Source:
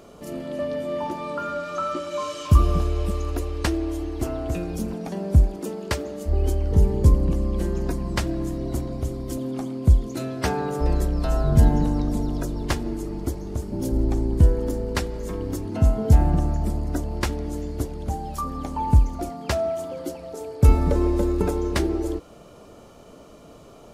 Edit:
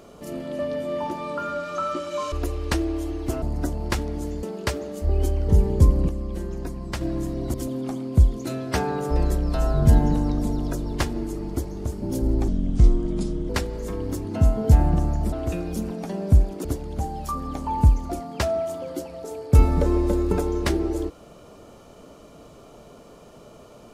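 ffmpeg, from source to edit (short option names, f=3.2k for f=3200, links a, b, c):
-filter_complex "[0:a]asplit=11[a][b][c][d][e][f][g][h][i][j][k];[a]atrim=end=2.322[l];[b]atrim=start=3.248:end=4.352[m];[c]atrim=start=16.728:end=17.742[n];[d]atrim=start=5.668:end=7.332[o];[e]atrim=start=7.328:end=8.252,asetpts=PTS-STARTPTS,volume=-5.5dB[p];[f]atrim=start=8.248:end=8.782[q];[g]atrim=start=9.238:end=14.184[r];[h]atrim=start=14.18:end=14.9,asetpts=PTS-STARTPTS,asetrate=31311,aresample=44100,atrim=end_sample=44721,asetpts=PTS-STARTPTS[s];[i]atrim=start=14.896:end=16.732[t];[j]atrim=start=4.348:end=5.672[u];[k]atrim=start=17.738[v];[l][m]acrossfade=d=0.004:c1=hsin:c2=hsin[w];[w][n]acrossfade=d=0.004:c1=hsin:c2=hsin[x];[x][o]acrossfade=d=0.004:c1=hsin:c2=hsin[y];[y][p]acrossfade=d=0.004:c1=hsin:c2=hsin[z];[z][q]acrossfade=d=0.004:c1=hsin:c2=hsin[aa];[aa][r]acrossfade=d=0.004:c1=hsin:c2=hsin[ab];[ab][s]acrossfade=d=0.004:c1=hsin:c2=hsin[ac];[ac][t]acrossfade=d=0.004:c1=hsin:c2=hsin[ad];[ad][u]acrossfade=d=0.004:c1=hsin:c2=hsin[ae];[ae][v]acrossfade=d=0.004:c1=hsin:c2=hsin"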